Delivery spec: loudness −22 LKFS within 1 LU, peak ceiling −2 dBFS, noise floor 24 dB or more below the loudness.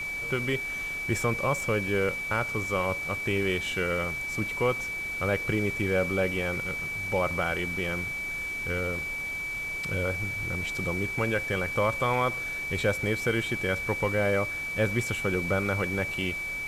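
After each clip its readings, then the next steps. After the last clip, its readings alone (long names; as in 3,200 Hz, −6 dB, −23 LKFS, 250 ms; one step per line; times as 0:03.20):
interfering tone 2,300 Hz; level of the tone −31 dBFS; background noise floor −34 dBFS; target noise floor −52 dBFS; integrated loudness −28.0 LKFS; sample peak −14.0 dBFS; target loudness −22.0 LKFS
→ notch filter 2,300 Hz, Q 30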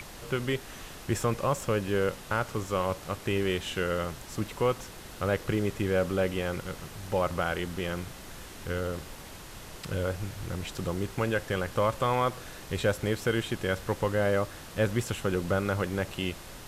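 interfering tone none found; background noise floor −45 dBFS; target noise floor −55 dBFS
→ noise reduction from a noise print 10 dB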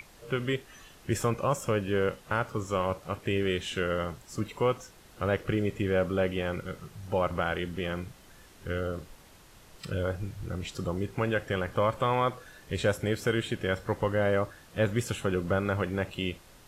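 background noise floor −55 dBFS; integrated loudness −30.5 LKFS; sample peak −15.0 dBFS; target loudness −22.0 LKFS
→ level +8.5 dB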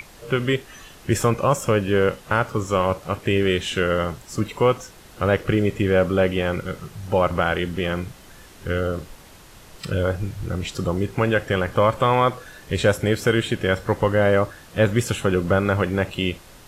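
integrated loudness −22.0 LKFS; sample peak −6.5 dBFS; background noise floor −46 dBFS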